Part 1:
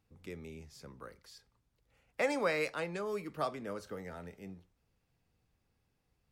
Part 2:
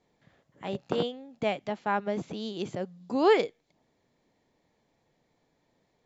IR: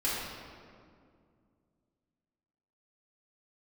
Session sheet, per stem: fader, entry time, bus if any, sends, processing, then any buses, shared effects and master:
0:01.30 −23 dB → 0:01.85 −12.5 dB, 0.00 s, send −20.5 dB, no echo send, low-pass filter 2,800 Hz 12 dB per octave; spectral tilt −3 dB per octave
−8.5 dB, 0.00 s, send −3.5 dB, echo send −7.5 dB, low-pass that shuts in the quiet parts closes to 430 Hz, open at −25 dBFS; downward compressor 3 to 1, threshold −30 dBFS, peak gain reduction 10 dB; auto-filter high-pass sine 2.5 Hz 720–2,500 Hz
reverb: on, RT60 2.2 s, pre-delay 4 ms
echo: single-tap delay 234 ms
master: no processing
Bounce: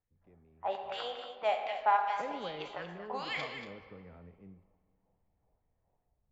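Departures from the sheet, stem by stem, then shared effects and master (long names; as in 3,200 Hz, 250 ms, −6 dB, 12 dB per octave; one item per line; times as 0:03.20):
stem 2 −8.5 dB → −1.5 dB
reverb return −6.5 dB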